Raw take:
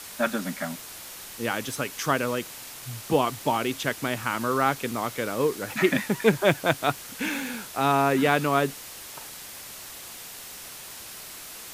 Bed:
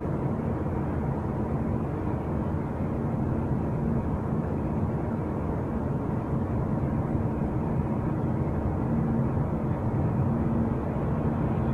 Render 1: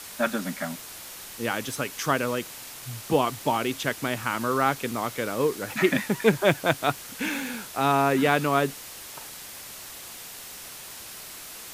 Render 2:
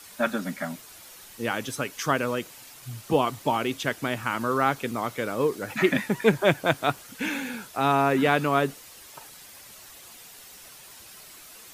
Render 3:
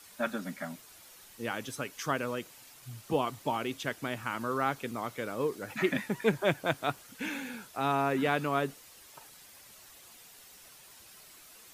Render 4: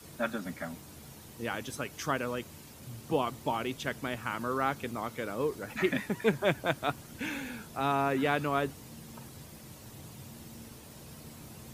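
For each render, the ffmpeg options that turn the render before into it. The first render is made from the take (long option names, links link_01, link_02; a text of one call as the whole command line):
ffmpeg -i in.wav -af anull out.wav
ffmpeg -i in.wav -af "afftdn=noise_reduction=8:noise_floor=-42" out.wav
ffmpeg -i in.wav -af "volume=-7dB" out.wav
ffmpeg -i in.wav -i bed.wav -filter_complex "[1:a]volume=-23dB[link_01];[0:a][link_01]amix=inputs=2:normalize=0" out.wav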